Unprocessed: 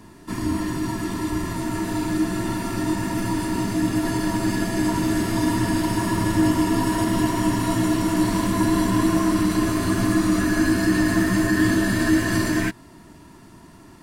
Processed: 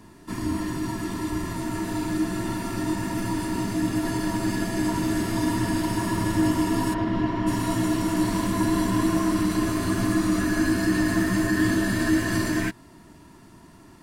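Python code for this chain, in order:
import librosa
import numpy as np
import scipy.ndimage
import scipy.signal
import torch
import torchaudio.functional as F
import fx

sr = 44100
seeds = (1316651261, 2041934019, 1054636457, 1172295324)

y = fx.air_absorb(x, sr, metres=250.0, at=(6.93, 7.46), fade=0.02)
y = F.gain(torch.from_numpy(y), -3.0).numpy()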